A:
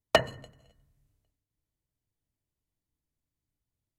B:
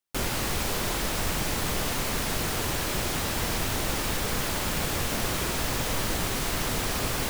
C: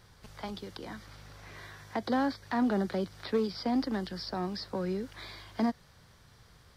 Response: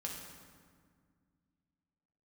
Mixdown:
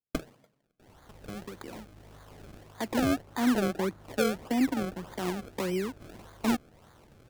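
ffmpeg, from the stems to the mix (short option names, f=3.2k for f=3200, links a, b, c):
-filter_complex "[0:a]highpass=f=150:w=0.5412,highpass=f=150:w=1.3066,volume=-11.5dB[a];[1:a]highpass=f=870:w=0.5412,highpass=f=870:w=1.3066,alimiter=level_in=8dB:limit=-24dB:level=0:latency=1,volume=-8dB,adelay=650,volume=-18dB[b];[2:a]lowpass=4k,adynamicequalizer=threshold=0.00631:dfrequency=320:dqfactor=1.3:tfrequency=320:tqfactor=1.3:attack=5:release=100:ratio=0.375:range=3.5:mode=boostabove:tftype=bell,adelay=850,volume=-1.5dB[c];[a][b][c]amix=inputs=3:normalize=0,acrusher=samples=32:mix=1:aa=0.000001:lfo=1:lforange=32:lforate=1.7,adynamicequalizer=threshold=0.00501:dfrequency=1900:dqfactor=0.7:tfrequency=1900:tqfactor=0.7:attack=5:release=100:ratio=0.375:range=4:mode=cutabove:tftype=highshelf"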